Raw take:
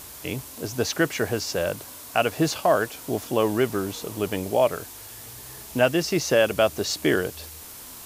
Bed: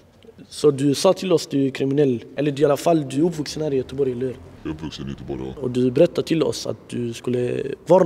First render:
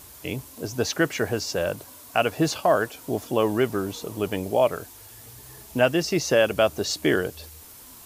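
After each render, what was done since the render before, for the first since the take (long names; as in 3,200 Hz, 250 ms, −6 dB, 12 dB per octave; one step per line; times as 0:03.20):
broadband denoise 6 dB, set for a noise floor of −42 dBFS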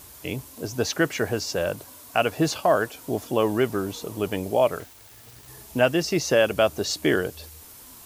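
0:04.80–0:05.48: phase distortion by the signal itself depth 0.26 ms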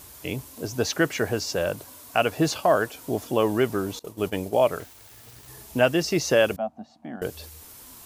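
0:03.99–0:04.68: downward expander −29 dBFS
0:06.56–0:07.22: pair of resonant band-passes 410 Hz, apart 1.7 octaves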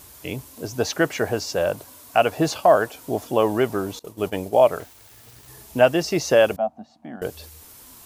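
dynamic equaliser 730 Hz, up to +6 dB, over −35 dBFS, Q 1.2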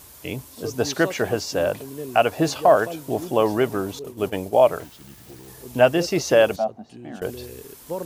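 mix in bed −16 dB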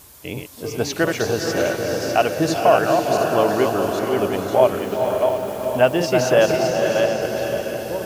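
feedback delay that plays each chunk backwards 353 ms, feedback 47%, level −4.5 dB
feedback delay with all-pass diffusion 477 ms, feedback 54%, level −5 dB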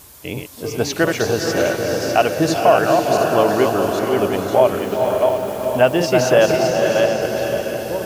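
level +2.5 dB
brickwall limiter −2 dBFS, peak gain reduction 3 dB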